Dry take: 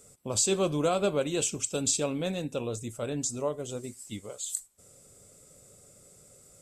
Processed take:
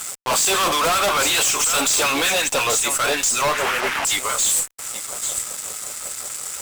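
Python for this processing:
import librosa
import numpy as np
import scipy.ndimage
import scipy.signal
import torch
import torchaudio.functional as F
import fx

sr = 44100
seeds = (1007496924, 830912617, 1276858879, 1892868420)

y = fx.delta_mod(x, sr, bps=16000, step_db=-45.0, at=(3.53, 4.05))
y = fx.peak_eq(y, sr, hz=540.0, db=-3.5, octaves=0.77)
y = y + 10.0 ** (-19.5 / 20.0) * np.pad(y, (int(830 * sr / 1000.0), 0))[:len(y)]
y = fx.filter_lfo_highpass(y, sr, shape='sine', hz=5.4, low_hz=800.0, high_hz=1600.0, q=1.9)
y = fx.fuzz(y, sr, gain_db=52.0, gate_db=-57.0)
y = y * librosa.db_to_amplitude(-4.0)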